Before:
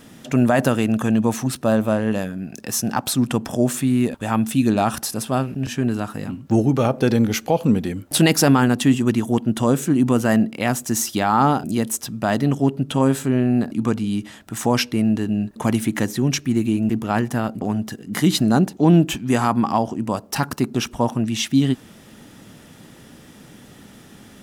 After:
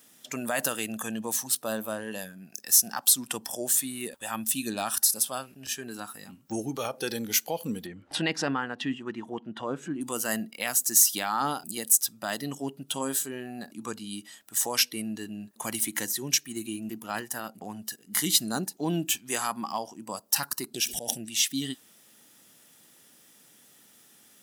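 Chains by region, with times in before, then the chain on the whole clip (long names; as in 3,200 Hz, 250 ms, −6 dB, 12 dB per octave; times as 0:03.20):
0:07.86–0:10.01: low-pass filter 2,300 Hz + upward compression, threshold −20 dBFS
0:20.74–0:21.26: volume swells 116 ms + Butterworth band-reject 1,100 Hz, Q 1.1 + background raised ahead of every attack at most 27 dB per second
whole clip: RIAA equalisation recording; noise reduction from a noise print of the clip's start 8 dB; dynamic equaliser 740 Hz, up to −4 dB, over −31 dBFS, Q 0.88; level −7.5 dB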